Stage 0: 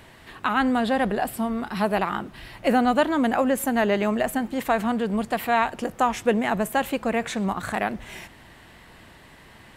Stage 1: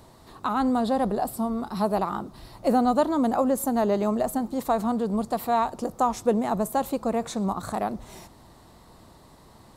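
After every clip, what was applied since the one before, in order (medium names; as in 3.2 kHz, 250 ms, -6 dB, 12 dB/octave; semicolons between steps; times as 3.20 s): high-order bell 2.2 kHz -13.5 dB 1.3 oct; trim -1 dB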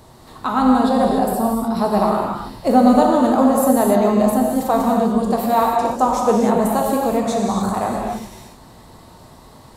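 gated-style reverb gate 320 ms flat, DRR -1.5 dB; trim +4.5 dB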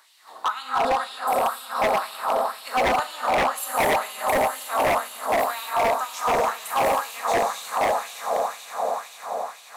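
echo with a slow build-up 87 ms, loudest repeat 8, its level -13.5 dB; LFO high-pass sine 2 Hz 580–2900 Hz; wavefolder -10 dBFS; trim -5 dB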